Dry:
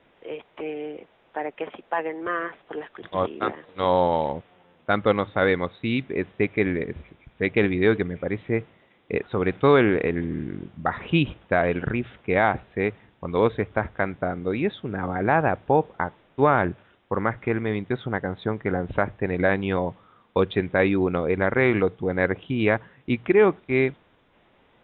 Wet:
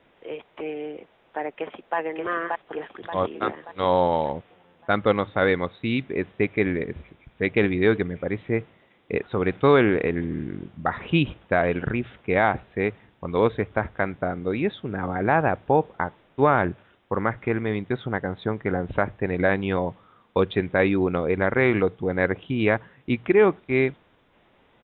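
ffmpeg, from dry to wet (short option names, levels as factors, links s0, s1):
-filter_complex "[0:a]asplit=2[s0][s1];[s1]afade=t=in:st=1.53:d=0.01,afade=t=out:st=1.97:d=0.01,aecho=0:1:580|1160|1740|2320|2900|3480:0.794328|0.357448|0.160851|0.0723832|0.0325724|0.0146576[s2];[s0][s2]amix=inputs=2:normalize=0"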